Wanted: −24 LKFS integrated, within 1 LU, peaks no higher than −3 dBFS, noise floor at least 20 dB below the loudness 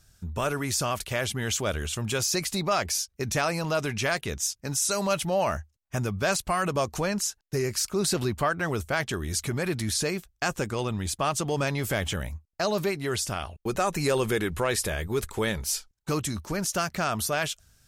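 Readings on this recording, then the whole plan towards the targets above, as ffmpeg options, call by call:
integrated loudness −28.0 LKFS; sample peak −13.0 dBFS; target loudness −24.0 LKFS
→ -af "volume=4dB"

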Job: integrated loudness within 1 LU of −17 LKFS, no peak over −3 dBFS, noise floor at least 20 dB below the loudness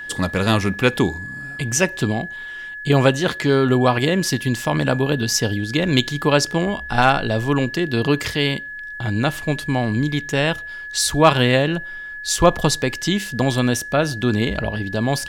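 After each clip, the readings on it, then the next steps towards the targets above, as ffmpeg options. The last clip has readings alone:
interfering tone 1,700 Hz; level of the tone −30 dBFS; integrated loudness −19.5 LKFS; sample peak −2.0 dBFS; target loudness −17.0 LKFS
→ -af "bandreject=frequency=1700:width=30"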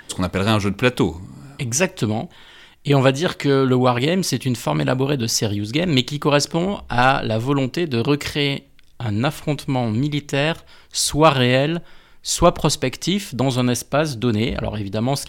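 interfering tone none found; integrated loudness −20.0 LKFS; sample peak −2.0 dBFS; target loudness −17.0 LKFS
→ -af "volume=3dB,alimiter=limit=-3dB:level=0:latency=1"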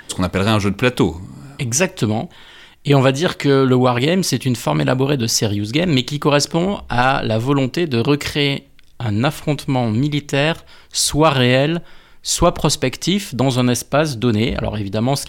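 integrated loudness −17.5 LKFS; sample peak −3.0 dBFS; background noise floor −44 dBFS

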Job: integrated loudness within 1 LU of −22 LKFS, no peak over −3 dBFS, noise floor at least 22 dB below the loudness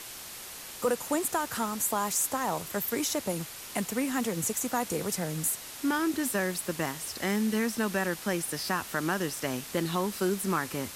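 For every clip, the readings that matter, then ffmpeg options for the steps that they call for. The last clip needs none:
background noise floor −43 dBFS; target noise floor −53 dBFS; integrated loudness −30.5 LKFS; sample peak −14.0 dBFS; target loudness −22.0 LKFS
→ -af "afftdn=noise_reduction=10:noise_floor=-43"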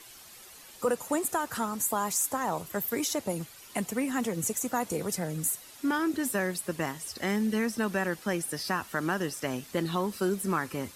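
background noise floor −50 dBFS; target noise floor −53 dBFS
→ -af "afftdn=noise_reduction=6:noise_floor=-50"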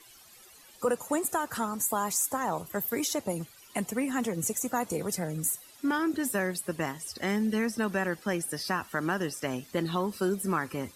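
background noise floor −55 dBFS; integrated loudness −30.5 LKFS; sample peak −14.5 dBFS; target loudness −22.0 LKFS
→ -af "volume=8.5dB"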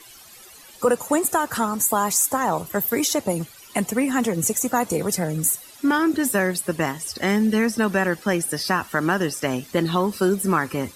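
integrated loudness −22.0 LKFS; sample peak −6.0 dBFS; background noise floor −46 dBFS

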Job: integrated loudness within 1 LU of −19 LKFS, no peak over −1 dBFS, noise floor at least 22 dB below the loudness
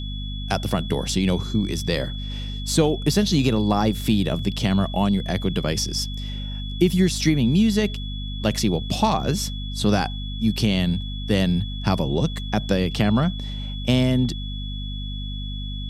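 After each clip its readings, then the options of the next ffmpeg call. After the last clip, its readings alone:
mains hum 50 Hz; hum harmonics up to 250 Hz; level of the hum −28 dBFS; interfering tone 3,400 Hz; level of the tone −36 dBFS; integrated loudness −23.0 LKFS; sample peak −4.5 dBFS; target loudness −19.0 LKFS
→ -af "bandreject=frequency=50:width_type=h:width=6,bandreject=frequency=100:width_type=h:width=6,bandreject=frequency=150:width_type=h:width=6,bandreject=frequency=200:width_type=h:width=6,bandreject=frequency=250:width_type=h:width=6"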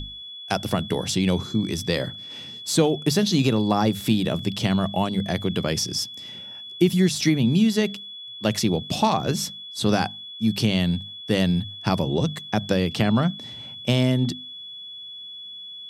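mains hum none found; interfering tone 3,400 Hz; level of the tone −36 dBFS
→ -af "bandreject=frequency=3400:width=30"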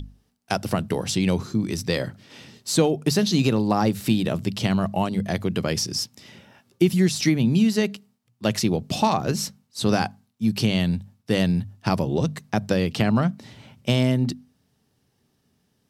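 interfering tone none found; integrated loudness −23.5 LKFS; sample peak −6.0 dBFS; target loudness −19.0 LKFS
→ -af "volume=4.5dB"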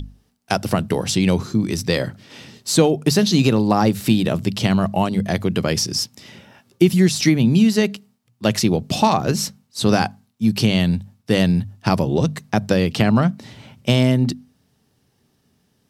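integrated loudness −19.0 LKFS; sample peak −1.5 dBFS; background noise floor −65 dBFS

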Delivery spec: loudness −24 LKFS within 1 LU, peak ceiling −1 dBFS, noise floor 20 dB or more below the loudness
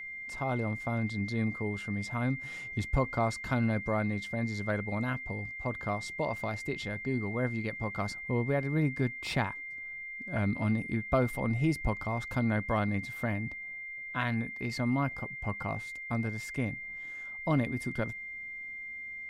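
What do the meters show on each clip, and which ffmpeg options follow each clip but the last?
interfering tone 2,100 Hz; level of the tone −39 dBFS; integrated loudness −33.0 LKFS; sample peak −15.5 dBFS; target loudness −24.0 LKFS
→ -af "bandreject=frequency=2100:width=30"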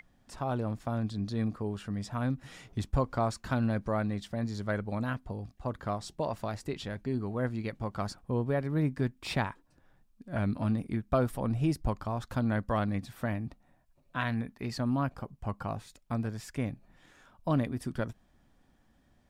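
interfering tone none found; integrated loudness −33.5 LKFS; sample peak −15.5 dBFS; target loudness −24.0 LKFS
→ -af "volume=9.5dB"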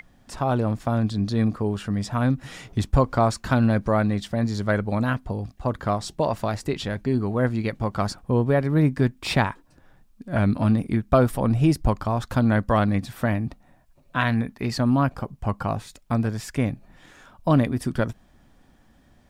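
integrated loudness −24.0 LKFS; sample peak −6.0 dBFS; background noise floor −57 dBFS

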